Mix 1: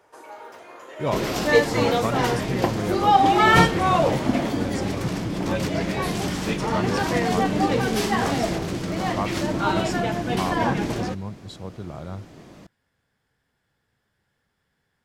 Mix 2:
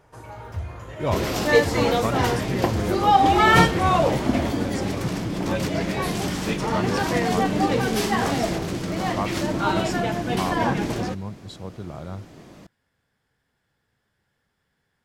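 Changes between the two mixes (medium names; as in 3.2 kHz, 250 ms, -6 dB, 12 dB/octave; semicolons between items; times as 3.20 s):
first sound: remove high-pass 310 Hz 24 dB/octave; second sound: add treble shelf 11 kHz +3.5 dB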